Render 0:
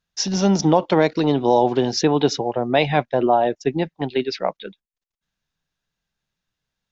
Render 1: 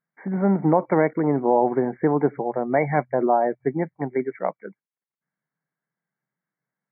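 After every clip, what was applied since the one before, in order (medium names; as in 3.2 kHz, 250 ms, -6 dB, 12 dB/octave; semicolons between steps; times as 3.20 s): FFT band-pass 120–2300 Hz; trim -2.5 dB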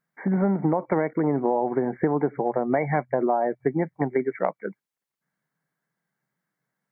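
compression, threshold -25 dBFS, peak gain reduction 12 dB; trim +5.5 dB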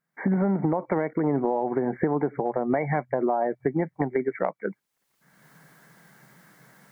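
recorder AGC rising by 31 dB/s; trim -2.5 dB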